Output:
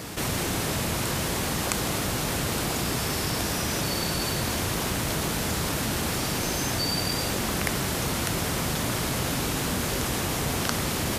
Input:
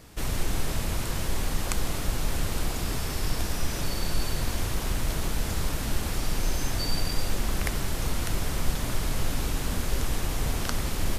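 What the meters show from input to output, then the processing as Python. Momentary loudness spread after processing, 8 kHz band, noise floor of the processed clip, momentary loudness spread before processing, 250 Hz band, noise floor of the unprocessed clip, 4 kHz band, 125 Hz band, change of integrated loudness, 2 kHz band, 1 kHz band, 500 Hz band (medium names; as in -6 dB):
1 LU, +6.0 dB, -29 dBFS, 1 LU, +5.5 dB, -31 dBFS, +6.0 dB, +1.5 dB, +4.0 dB, +6.0 dB, +6.0 dB, +6.0 dB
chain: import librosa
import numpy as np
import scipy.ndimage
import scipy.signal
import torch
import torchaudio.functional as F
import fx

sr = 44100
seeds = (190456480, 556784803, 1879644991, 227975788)

y = scipy.signal.sosfilt(scipy.signal.butter(2, 110.0, 'highpass', fs=sr, output='sos'), x)
y = fx.env_flatten(y, sr, amount_pct=50)
y = y * librosa.db_to_amplitude(3.5)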